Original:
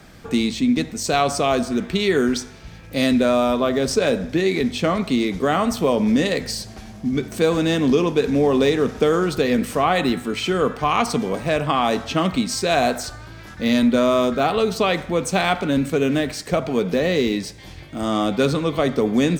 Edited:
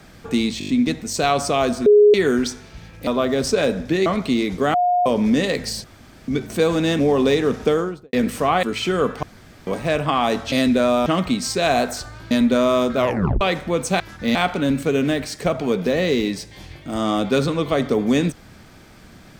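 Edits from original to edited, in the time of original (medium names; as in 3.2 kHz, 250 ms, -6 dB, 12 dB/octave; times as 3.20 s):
0.59 s: stutter 0.02 s, 6 plays
1.76–2.04 s: bleep 416 Hz -7.5 dBFS
2.97–3.51 s: move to 12.13 s
4.50–4.88 s: delete
5.56–5.88 s: bleep 715 Hz -14.5 dBFS
6.66–7.10 s: room tone
7.81–8.34 s: delete
8.99–9.48 s: studio fade out
9.98–10.24 s: delete
10.84–11.28 s: room tone
13.38–13.73 s: move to 15.42 s
14.39 s: tape stop 0.44 s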